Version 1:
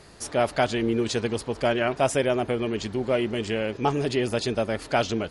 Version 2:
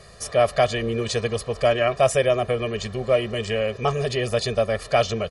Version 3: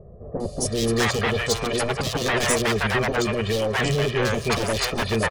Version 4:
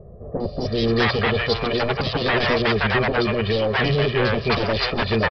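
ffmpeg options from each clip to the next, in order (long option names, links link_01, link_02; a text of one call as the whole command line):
ffmpeg -i in.wav -af "aecho=1:1:1.7:0.96" out.wav
ffmpeg -i in.wav -filter_complex "[0:a]aeval=exprs='0.0891*(abs(mod(val(0)/0.0891+3,4)-2)-1)':channel_layout=same,bandreject=frequency=60:width_type=h:width=6,bandreject=frequency=120:width_type=h:width=6,acrossover=split=620|3300[link_01][link_02][link_03];[link_03]adelay=400[link_04];[link_02]adelay=650[link_05];[link_01][link_05][link_04]amix=inputs=3:normalize=0,volume=6dB" out.wav
ffmpeg -i in.wav -af "aresample=11025,aresample=44100,volume=2.5dB" out.wav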